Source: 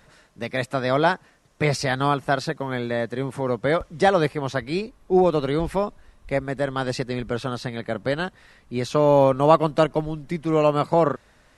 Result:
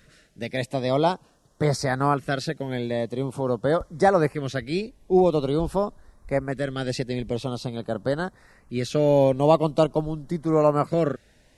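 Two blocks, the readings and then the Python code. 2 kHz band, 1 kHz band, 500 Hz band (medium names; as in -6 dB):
-5.0 dB, -3.0 dB, -1.0 dB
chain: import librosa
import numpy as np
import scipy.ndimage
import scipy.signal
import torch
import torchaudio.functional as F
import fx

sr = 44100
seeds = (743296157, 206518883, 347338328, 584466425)

y = fx.filter_lfo_notch(x, sr, shape='saw_up', hz=0.46, low_hz=830.0, high_hz=3600.0, q=0.84)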